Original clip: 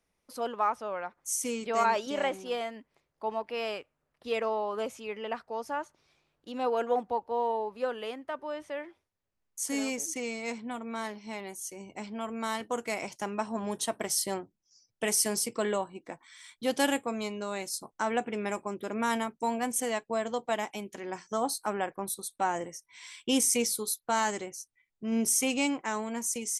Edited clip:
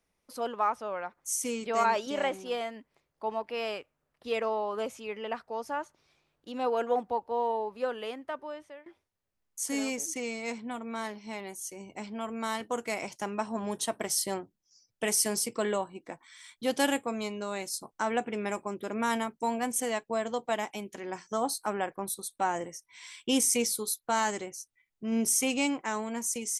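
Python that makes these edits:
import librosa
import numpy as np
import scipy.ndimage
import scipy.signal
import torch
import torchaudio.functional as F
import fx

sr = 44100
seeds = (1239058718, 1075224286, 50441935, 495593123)

y = fx.edit(x, sr, fx.fade_out_to(start_s=8.31, length_s=0.55, floor_db=-19.5), tone=tone)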